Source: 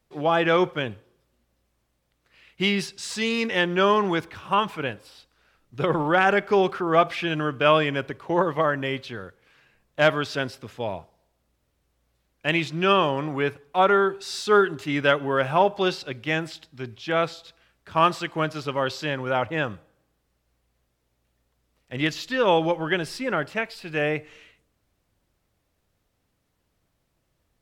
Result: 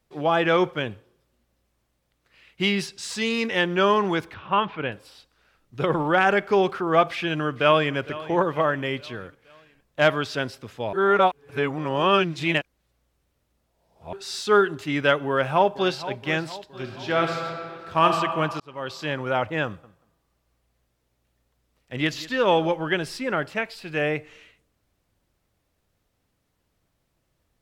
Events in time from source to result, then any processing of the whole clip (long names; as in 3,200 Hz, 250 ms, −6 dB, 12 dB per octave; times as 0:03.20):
0:04.34–0:04.92: low-pass filter 3,600 Hz 24 dB per octave
0:07.09–0:07.96: delay throw 460 ms, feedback 50%, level −17 dB
0:10.93–0:14.13: reverse
0:15.28–0:16.03: delay throw 470 ms, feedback 55%, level −14.5 dB
0:16.67–0:18.06: thrown reverb, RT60 2.3 s, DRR 2.5 dB
0:18.60–0:19.13: fade in
0:19.65–0:22.74: repeating echo 184 ms, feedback 17%, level −19 dB